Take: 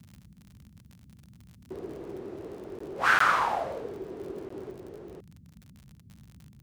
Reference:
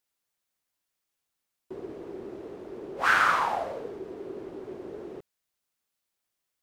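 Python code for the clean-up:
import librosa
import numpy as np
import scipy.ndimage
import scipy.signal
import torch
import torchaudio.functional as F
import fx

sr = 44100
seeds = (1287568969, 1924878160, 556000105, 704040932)

y = fx.fix_declick_ar(x, sr, threshold=6.5)
y = fx.fix_interpolate(y, sr, at_s=(2.79, 3.19, 4.49), length_ms=14.0)
y = fx.noise_reduce(y, sr, print_start_s=0.78, print_end_s=1.28, reduce_db=29.0)
y = fx.fix_level(y, sr, at_s=4.7, step_db=4.5)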